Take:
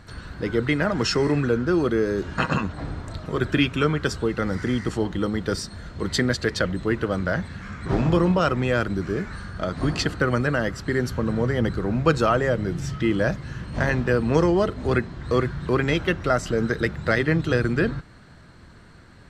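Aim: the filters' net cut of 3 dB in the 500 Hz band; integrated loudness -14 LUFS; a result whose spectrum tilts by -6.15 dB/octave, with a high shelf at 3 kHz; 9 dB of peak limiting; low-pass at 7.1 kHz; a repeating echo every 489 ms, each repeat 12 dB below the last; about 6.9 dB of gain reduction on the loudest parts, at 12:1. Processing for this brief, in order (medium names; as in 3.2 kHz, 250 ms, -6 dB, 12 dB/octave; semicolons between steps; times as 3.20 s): low-pass 7.1 kHz; peaking EQ 500 Hz -3.5 dB; treble shelf 3 kHz -8 dB; compression 12:1, threshold -23 dBFS; peak limiter -20 dBFS; feedback delay 489 ms, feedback 25%, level -12 dB; trim +17 dB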